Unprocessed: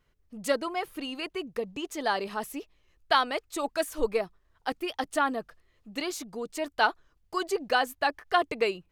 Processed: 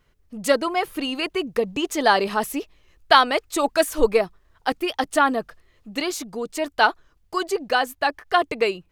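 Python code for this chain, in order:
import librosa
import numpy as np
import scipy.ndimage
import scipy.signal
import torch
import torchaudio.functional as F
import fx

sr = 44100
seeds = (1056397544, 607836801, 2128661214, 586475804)

y = fx.rider(x, sr, range_db=10, speed_s=2.0)
y = y * 10.0 ** (7.0 / 20.0)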